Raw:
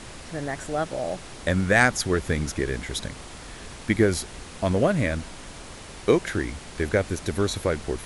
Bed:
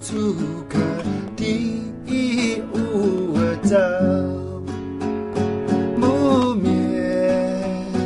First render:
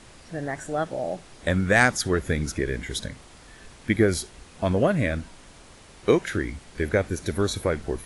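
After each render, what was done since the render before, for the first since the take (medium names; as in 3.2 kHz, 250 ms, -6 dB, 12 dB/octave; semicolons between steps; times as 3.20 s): noise print and reduce 8 dB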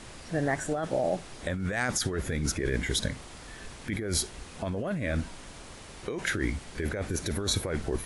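peak limiter -14.5 dBFS, peak gain reduction 10.5 dB; compressor with a negative ratio -29 dBFS, ratio -1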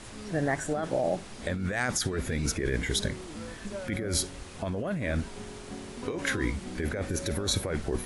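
add bed -22.5 dB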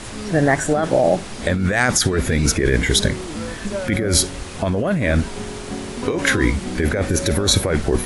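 trim +12 dB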